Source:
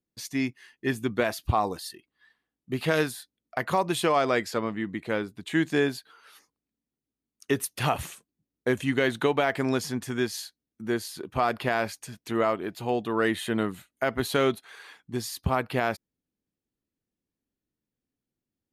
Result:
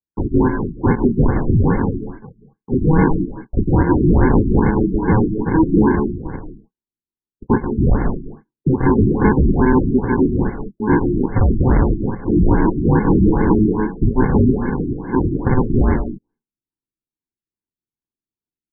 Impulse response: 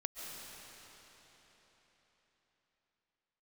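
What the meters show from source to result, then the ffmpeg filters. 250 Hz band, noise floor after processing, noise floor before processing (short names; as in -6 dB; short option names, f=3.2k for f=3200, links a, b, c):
+15.0 dB, under -85 dBFS, under -85 dBFS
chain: -filter_complex "[0:a]agate=range=-33dB:threshold=-55dB:ratio=3:detection=peak,highshelf=f=5.8k:g=8.5,acrossover=split=670|1600[a][b][c];[b]acompressor=threshold=-39dB:ratio=6[d];[a][d][c]amix=inputs=3:normalize=0,asplit=2[e][f];[f]highpass=f=720:p=1,volume=32dB,asoftclip=type=tanh:threshold=-7.5dB[g];[e][g]amix=inputs=2:normalize=0,lowpass=f=4.3k:p=1,volume=-6dB,aresample=16000,acrusher=samples=25:mix=1:aa=0.000001,aresample=44100[h];[1:a]atrim=start_sample=2205,afade=t=out:st=0.26:d=0.01,atrim=end_sample=11907[i];[h][i]afir=irnorm=-1:irlink=0,afftfilt=real='re*lt(b*sr/1024,380*pow(2200/380,0.5+0.5*sin(2*PI*2.4*pts/sr)))':imag='im*lt(b*sr/1024,380*pow(2200/380,0.5+0.5*sin(2*PI*2.4*pts/sr)))':win_size=1024:overlap=0.75,volume=6dB"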